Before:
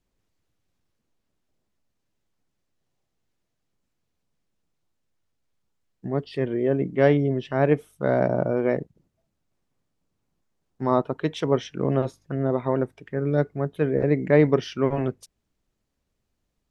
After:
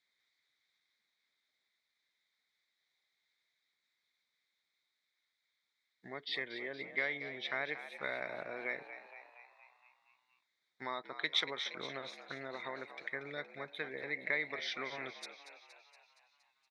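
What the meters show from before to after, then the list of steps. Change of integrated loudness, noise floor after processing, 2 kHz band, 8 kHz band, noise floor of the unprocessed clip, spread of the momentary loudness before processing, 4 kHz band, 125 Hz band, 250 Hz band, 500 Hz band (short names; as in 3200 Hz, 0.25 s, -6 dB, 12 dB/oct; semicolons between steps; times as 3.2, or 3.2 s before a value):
-15.5 dB, -85 dBFS, -2.0 dB, n/a, -78 dBFS, 10 LU, +2.5 dB, -32.5 dB, -26.5 dB, -22.0 dB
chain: compressor, threshold -26 dBFS, peak gain reduction 13.5 dB; double band-pass 2800 Hz, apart 0.8 oct; frequency-shifting echo 0.234 s, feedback 61%, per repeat +75 Hz, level -11.5 dB; gain +12.5 dB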